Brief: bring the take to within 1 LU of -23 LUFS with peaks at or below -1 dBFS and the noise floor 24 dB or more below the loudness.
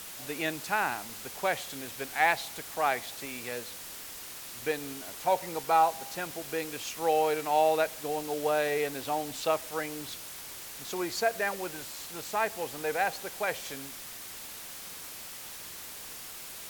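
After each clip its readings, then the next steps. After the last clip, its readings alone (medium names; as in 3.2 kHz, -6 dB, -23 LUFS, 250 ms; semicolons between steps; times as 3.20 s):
noise floor -44 dBFS; noise floor target -56 dBFS; loudness -32.0 LUFS; peak level -10.0 dBFS; loudness target -23.0 LUFS
-> noise reduction 12 dB, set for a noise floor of -44 dBFS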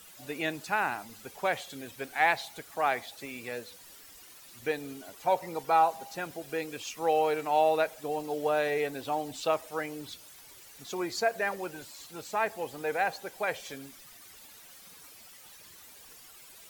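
noise floor -52 dBFS; noise floor target -55 dBFS
-> noise reduction 6 dB, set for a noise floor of -52 dBFS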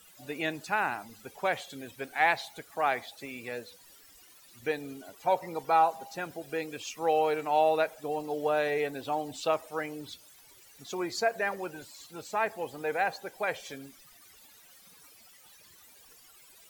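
noise floor -57 dBFS; loudness -31.0 LUFS; peak level -10.5 dBFS; loudness target -23.0 LUFS
-> trim +8 dB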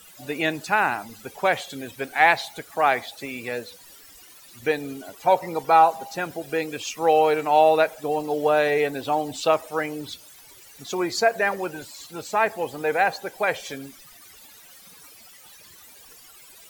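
loudness -23.0 LUFS; peak level -2.5 dBFS; noise floor -49 dBFS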